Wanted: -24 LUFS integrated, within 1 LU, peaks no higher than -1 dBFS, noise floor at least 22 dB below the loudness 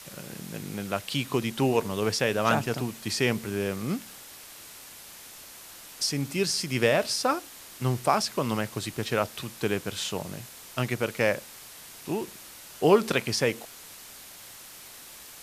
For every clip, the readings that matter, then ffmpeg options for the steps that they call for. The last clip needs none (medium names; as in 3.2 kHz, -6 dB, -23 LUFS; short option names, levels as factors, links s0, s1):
noise floor -47 dBFS; noise floor target -50 dBFS; loudness -28.0 LUFS; peak level -7.0 dBFS; loudness target -24.0 LUFS
-> -af "afftdn=nr=6:nf=-47"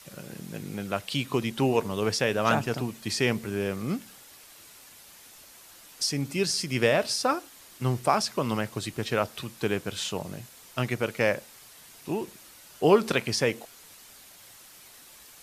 noise floor -51 dBFS; loudness -28.0 LUFS; peak level -7.0 dBFS; loudness target -24.0 LUFS
-> -af "volume=1.58"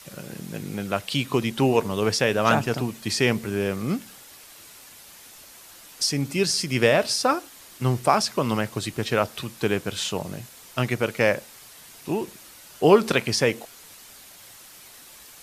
loudness -24.0 LUFS; peak level -3.5 dBFS; noise floor -47 dBFS